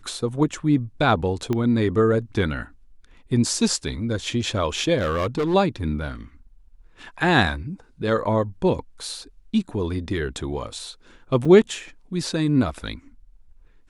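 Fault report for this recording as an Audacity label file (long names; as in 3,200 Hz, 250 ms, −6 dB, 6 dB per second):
1.530000	1.530000	click −13 dBFS
4.970000	5.550000	clipping −19 dBFS
11.450000	11.450000	drop-out 4.5 ms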